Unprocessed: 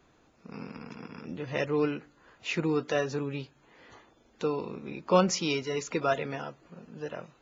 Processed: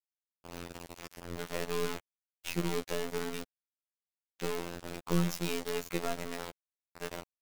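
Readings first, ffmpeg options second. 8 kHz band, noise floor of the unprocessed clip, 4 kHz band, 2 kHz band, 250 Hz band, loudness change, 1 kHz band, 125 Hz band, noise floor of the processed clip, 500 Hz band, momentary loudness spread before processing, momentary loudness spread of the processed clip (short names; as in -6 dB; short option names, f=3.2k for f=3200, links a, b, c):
n/a, -64 dBFS, -3.5 dB, -5.5 dB, -5.5 dB, -6.5 dB, -8.0 dB, -2.5 dB, under -85 dBFS, -7.5 dB, 17 LU, 14 LU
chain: -filter_complex "[0:a]aeval=exprs='if(lt(val(0),0),0.447*val(0),val(0))':c=same,acrossover=split=390[a][b];[b]acompressor=threshold=-37dB:ratio=5[c];[a][c]amix=inputs=2:normalize=0,acrusher=bits=5:mix=0:aa=0.000001,afftfilt=real='hypot(re,im)*cos(PI*b)':imag='0':win_size=2048:overlap=0.75,volume=2.5dB"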